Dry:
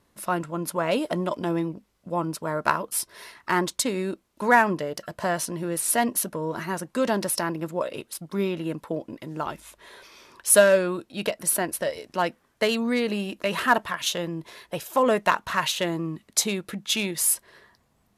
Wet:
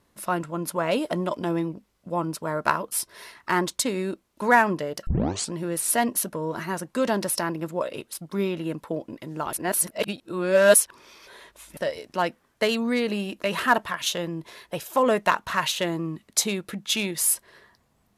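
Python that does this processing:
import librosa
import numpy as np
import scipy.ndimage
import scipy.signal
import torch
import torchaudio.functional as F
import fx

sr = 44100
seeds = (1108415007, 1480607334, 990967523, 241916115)

y = fx.edit(x, sr, fx.tape_start(start_s=5.07, length_s=0.45),
    fx.reverse_span(start_s=9.53, length_s=2.24), tone=tone)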